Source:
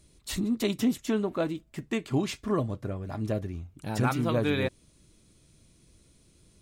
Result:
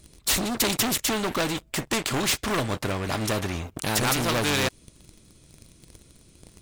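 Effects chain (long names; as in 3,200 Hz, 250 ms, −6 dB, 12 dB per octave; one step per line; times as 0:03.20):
leveller curve on the samples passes 3
every bin compressed towards the loudest bin 2 to 1
level +2.5 dB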